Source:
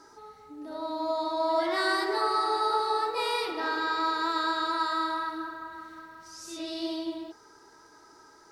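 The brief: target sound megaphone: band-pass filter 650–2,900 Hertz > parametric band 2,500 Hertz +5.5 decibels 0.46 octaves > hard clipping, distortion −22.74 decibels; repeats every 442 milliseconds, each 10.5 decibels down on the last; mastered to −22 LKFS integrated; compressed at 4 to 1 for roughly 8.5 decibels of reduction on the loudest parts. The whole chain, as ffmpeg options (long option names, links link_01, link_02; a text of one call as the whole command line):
ffmpeg -i in.wav -af "acompressor=threshold=-33dB:ratio=4,highpass=650,lowpass=2900,equalizer=frequency=2500:width_type=o:width=0.46:gain=5.5,aecho=1:1:442|884|1326:0.299|0.0896|0.0269,asoftclip=type=hard:threshold=-30dB,volume=15.5dB" out.wav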